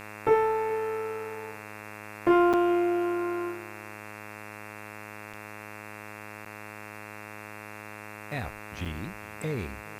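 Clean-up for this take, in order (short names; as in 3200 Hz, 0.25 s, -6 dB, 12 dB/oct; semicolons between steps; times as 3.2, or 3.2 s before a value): de-hum 105.5 Hz, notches 26; interpolate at 2.53/5.33/6.45/8.85, 6.4 ms; noise print and reduce 30 dB; inverse comb 0.418 s -21.5 dB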